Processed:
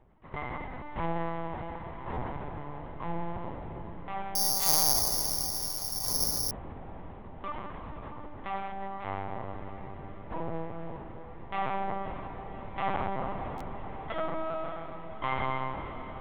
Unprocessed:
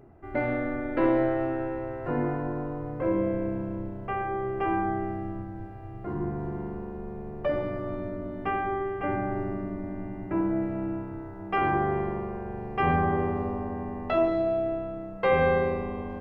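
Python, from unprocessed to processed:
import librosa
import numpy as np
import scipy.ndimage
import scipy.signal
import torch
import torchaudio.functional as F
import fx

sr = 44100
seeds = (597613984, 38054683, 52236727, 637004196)

y = fx.lower_of_two(x, sr, delay_ms=0.97)
y = fx.dynamic_eq(y, sr, hz=800.0, q=1.4, threshold_db=-42.0, ratio=4.0, max_db=4)
y = fx.lpc_vocoder(y, sr, seeds[0], excitation='pitch_kept', order=10)
y = fx.echo_diffused(y, sr, ms=575, feedback_pct=75, wet_db=-13)
y = fx.resample_bad(y, sr, factor=8, down='none', up='zero_stuff', at=(4.35, 6.51))
y = fx.buffer_glitch(y, sr, at_s=(2.13, 13.57), block=512, repeats=2)
y = y * librosa.db_to_amplitude(-7.0)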